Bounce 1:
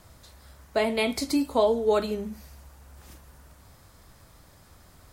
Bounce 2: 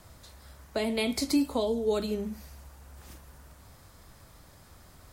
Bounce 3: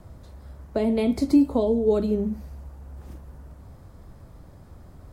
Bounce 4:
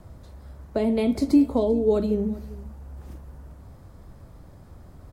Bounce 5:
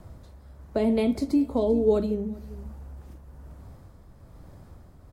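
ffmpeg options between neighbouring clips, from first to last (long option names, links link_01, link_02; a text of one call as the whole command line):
ffmpeg -i in.wav -filter_complex "[0:a]acrossover=split=390|3000[link_01][link_02][link_03];[link_02]acompressor=threshold=-33dB:ratio=6[link_04];[link_01][link_04][link_03]amix=inputs=3:normalize=0" out.wav
ffmpeg -i in.wav -af "tiltshelf=frequency=1100:gain=9.5" out.wav
ffmpeg -i in.wav -af "aecho=1:1:393:0.1" out.wav
ffmpeg -i in.wav -af "tremolo=f=1.1:d=0.46" out.wav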